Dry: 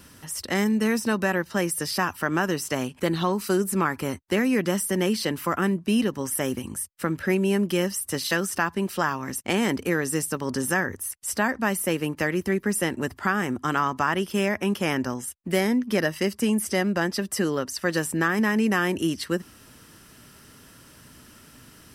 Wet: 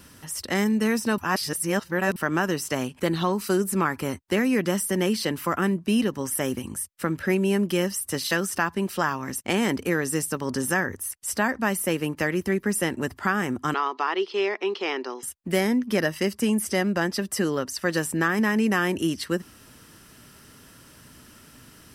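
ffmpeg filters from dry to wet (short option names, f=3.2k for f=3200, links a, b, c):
-filter_complex "[0:a]asettb=1/sr,asplit=3[a][b][c];[a]atrim=end=13.744[d];[b]atrim=start=13.74:end=15.23,asetpts=PTS-STARTPTS,afade=t=in:d=0.004:c=qsin,afade=t=out:st=1.486:d=0.004:c=qsin,highpass=f=370:w=0.5412,highpass=f=370:w=1.3066,equalizer=f=390:t=q:w=4:g=7,equalizer=f=580:t=q:w=4:g=-9,equalizer=f=1.6k:t=q:w=4:g=-7,equalizer=f=4.2k:t=q:w=4:g=10,lowpass=f=4.7k:w=0.5412,lowpass=f=4.7k:w=1.3066[e];[c]atrim=start=15.226[f];[d][e]acrossfade=d=0.004:c1=hsin:c2=qsin[g];[g][f]acrossfade=d=0.004:c1=qsin:c2=hsin,asplit=3[h][i][j];[h]atrim=end=1.182[k];[i]atrim=start=1.178:end=2.162,asetpts=PTS-STARTPTS,areverse[l];[j]atrim=start=2.158[m];[k][l]acrossfade=d=0.004:c1=hsin:c2=hsin[n];[n][m]acrossfade=d=0.004:c1=hsin:c2=hsin"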